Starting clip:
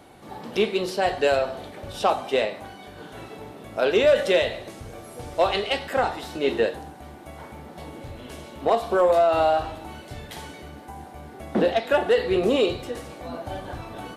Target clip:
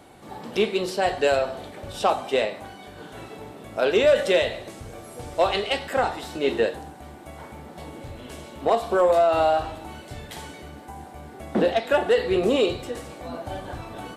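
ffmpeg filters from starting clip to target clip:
-af "equalizer=f=7.8k:t=o:w=0.24:g=4.5"

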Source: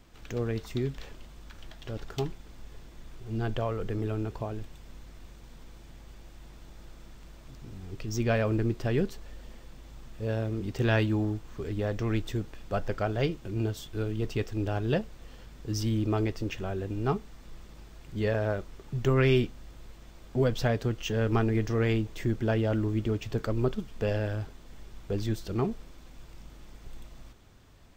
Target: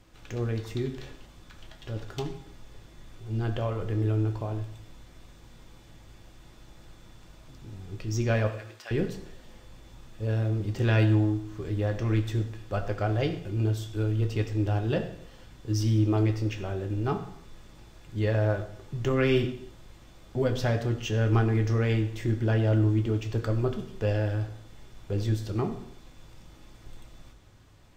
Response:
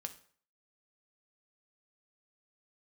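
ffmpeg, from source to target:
-filter_complex "[0:a]asettb=1/sr,asplit=3[a][b][c];[a]atrim=end=8.474[d];[b]atrim=start=8.47:end=8.91,asetpts=PTS-STARTPTS,afade=t=in:d=0.004:c=qsin,afade=t=out:st=0.436:d=0.004:c=qsin,highpass=1.2k[e];[c]atrim=start=8.906[f];[d][e]acrossfade=d=0.004:c1=hsin:c2=qsin[g];[g][f]acrossfade=d=0.004:c1=qsin:c2=hsin[h];[1:a]atrim=start_sample=2205,afade=t=out:st=0.25:d=0.01,atrim=end_sample=11466,asetrate=26901,aresample=44100[i];[h][i]afir=irnorm=-1:irlink=0"

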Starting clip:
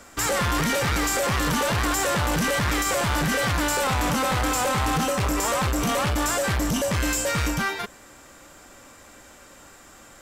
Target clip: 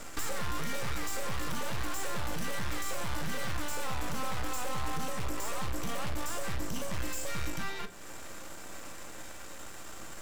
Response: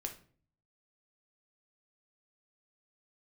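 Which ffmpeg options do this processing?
-filter_complex "[0:a]acompressor=threshold=-37dB:ratio=10,aeval=exprs='max(val(0),0)':c=same,asplit=2[a][b];[1:a]atrim=start_sample=2205,asetrate=48510,aresample=44100[c];[b][c]afir=irnorm=-1:irlink=0,volume=5dB[d];[a][d]amix=inputs=2:normalize=0,volume=-1.5dB"

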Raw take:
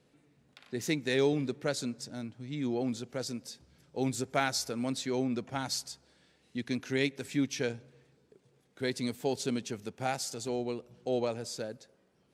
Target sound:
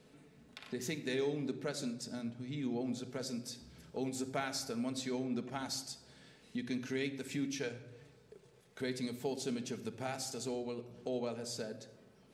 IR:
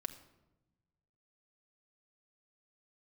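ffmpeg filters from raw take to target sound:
-filter_complex "[0:a]asettb=1/sr,asplit=3[a][b][c];[a]atrim=end=7.474[d];[b]atrim=start=7.47:end=8.82,asetpts=PTS-STARTPTS,afade=t=in:d=0.004:c=qsin,afade=t=out:st=1.346:d=0.004:c=qsin,equalizer=f=260:t=o:w=0.82:g=-10.5[e];[c]atrim=start=8.816[f];[d][e]acrossfade=d=0.004:c1=hsin:c2=qsin[g];[g][f]acrossfade=d=0.004:c1=qsin:c2=hsin,acompressor=threshold=-51dB:ratio=2[h];[1:a]atrim=start_sample=2205[i];[h][i]afir=irnorm=-1:irlink=0,volume=7.5dB"

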